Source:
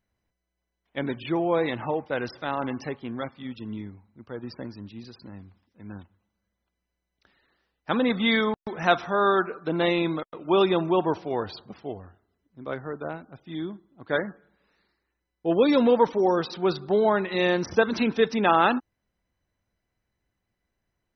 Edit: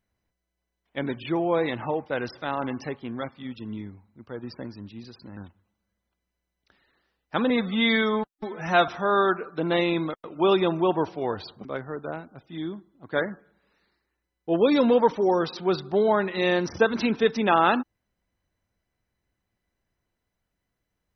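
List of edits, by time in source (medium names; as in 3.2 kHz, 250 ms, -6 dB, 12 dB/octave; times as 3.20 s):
5.37–5.92 s: delete
8.05–8.97 s: stretch 1.5×
11.74–12.62 s: delete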